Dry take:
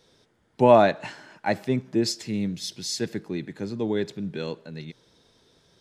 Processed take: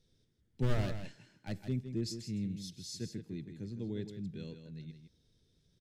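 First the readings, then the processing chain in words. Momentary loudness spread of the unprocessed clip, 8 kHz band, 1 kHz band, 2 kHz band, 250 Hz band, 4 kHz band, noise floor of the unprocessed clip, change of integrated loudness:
19 LU, −13.5 dB, −26.5 dB, −17.0 dB, −12.0 dB, −14.0 dB, −66 dBFS, −14.5 dB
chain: wavefolder on the positive side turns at −16.5 dBFS
guitar amp tone stack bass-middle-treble 10-0-1
on a send: single-tap delay 161 ms −9 dB
on the sum: level +6.5 dB

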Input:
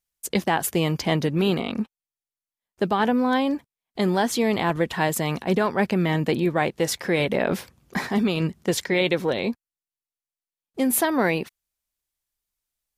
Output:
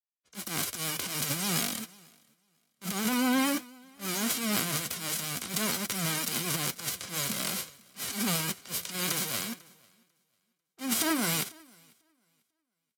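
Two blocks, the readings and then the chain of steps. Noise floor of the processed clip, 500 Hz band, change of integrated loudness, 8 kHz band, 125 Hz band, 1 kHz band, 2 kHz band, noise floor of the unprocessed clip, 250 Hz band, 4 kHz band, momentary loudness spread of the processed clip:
−84 dBFS, −17.0 dB, −6.5 dB, +2.5 dB, −11.5 dB, −11.0 dB, −7.0 dB, below −85 dBFS, −10.0 dB, −0.5 dB, 11 LU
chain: spectral envelope flattened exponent 0.1
camcorder AGC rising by 8.3 dB per second
low-pass that shuts in the quiet parts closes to 1,900 Hz, open at −22 dBFS
in parallel at −3 dB: brickwall limiter −14.5 dBFS, peak gain reduction 11 dB
on the sum: transient designer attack −12 dB, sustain +11 dB
notch comb filter 890 Hz
flanger 0.5 Hz, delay 1.4 ms, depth 9 ms, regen −65%
pitch vibrato 8.4 Hz 48 cents
on a send: repeating echo 495 ms, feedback 44%, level −18.5 dB
on the sum: multiband upward and downward expander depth 70%
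level −6.5 dB

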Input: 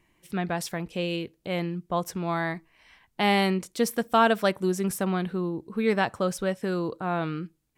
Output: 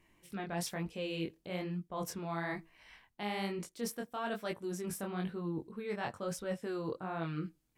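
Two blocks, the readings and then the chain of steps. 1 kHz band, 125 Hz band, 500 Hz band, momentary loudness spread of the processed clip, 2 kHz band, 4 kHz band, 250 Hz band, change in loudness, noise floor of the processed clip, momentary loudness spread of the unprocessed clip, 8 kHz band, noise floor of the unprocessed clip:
−14.0 dB, −9.5 dB, −12.0 dB, 4 LU, −12.5 dB, −12.0 dB, −11.0 dB, −12.0 dB, −73 dBFS, 10 LU, −7.5 dB, −70 dBFS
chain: reversed playback
downward compressor 12 to 1, threshold −32 dBFS, peak gain reduction 17 dB
reversed playback
chorus effect 1.1 Hz, delay 18 ms, depth 7 ms
level +1 dB

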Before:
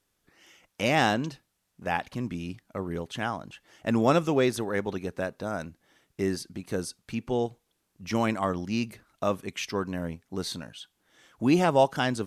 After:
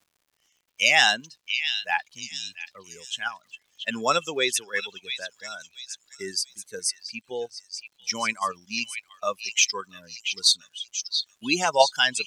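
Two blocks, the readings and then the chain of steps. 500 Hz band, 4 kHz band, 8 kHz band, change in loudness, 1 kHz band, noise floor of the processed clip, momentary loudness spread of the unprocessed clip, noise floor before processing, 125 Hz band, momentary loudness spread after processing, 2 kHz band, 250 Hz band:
−2.5 dB, +13.5 dB, +14.5 dB, +3.5 dB, +1.5 dB, −73 dBFS, 14 LU, −77 dBFS, −16.0 dB, 18 LU, +8.5 dB, −10.5 dB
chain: spectral dynamics exaggerated over time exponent 2
high-pass filter 110 Hz
in parallel at −1 dB: output level in coarse steps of 19 dB
on the sum: meter weighting curve ITU-R 468
surface crackle 180 per second −57 dBFS
on a send: echo through a band-pass that steps 682 ms, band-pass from 3,300 Hz, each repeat 0.7 octaves, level −5 dB
on the sum: level +4.5 dB

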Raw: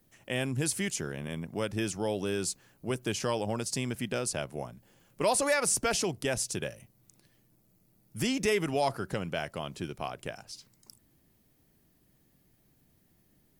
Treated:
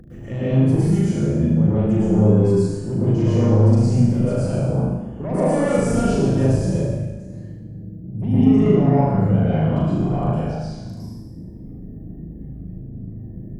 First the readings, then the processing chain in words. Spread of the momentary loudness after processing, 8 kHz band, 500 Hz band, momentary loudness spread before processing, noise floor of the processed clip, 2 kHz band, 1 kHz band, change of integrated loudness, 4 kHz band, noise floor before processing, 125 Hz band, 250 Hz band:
20 LU, −6.5 dB, +11.0 dB, 13 LU, −36 dBFS, −2.5 dB, +6.5 dB, +13.0 dB, −5.0 dB, −68 dBFS, +22.0 dB, +18.0 dB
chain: gate on every frequency bin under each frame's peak −20 dB strong
high-pass filter 47 Hz
RIAA equalisation playback
mains-hum notches 50/100 Hz
in parallel at −6 dB: sine wavefolder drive 8 dB, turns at −13 dBFS
on the sum: downward compressor, threshold −22 dBFS, peak gain reduction 7 dB
tilt shelving filter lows +6 dB, about 650 Hz
upward compression, threshold −30 dBFS
brickwall limiter −16 dBFS, peak gain reduction 6 dB
on a send: flutter between parallel walls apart 6.5 metres, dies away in 0.68 s
on the sum: dense smooth reverb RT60 1.2 s, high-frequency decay 0.9×, pre-delay 95 ms, DRR −9.5 dB
level −7 dB

